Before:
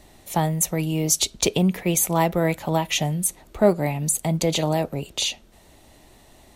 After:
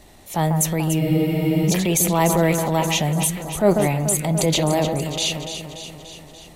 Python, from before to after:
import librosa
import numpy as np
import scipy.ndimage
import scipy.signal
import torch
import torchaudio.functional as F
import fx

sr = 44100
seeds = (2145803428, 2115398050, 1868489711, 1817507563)

y = fx.echo_alternate(x, sr, ms=145, hz=1700.0, feedback_pct=78, wet_db=-8.0)
y = fx.transient(y, sr, attack_db=-5, sustain_db=4)
y = fx.spec_freeze(y, sr, seeds[0], at_s=1.02, hold_s=0.66)
y = y * 10.0 ** (2.5 / 20.0)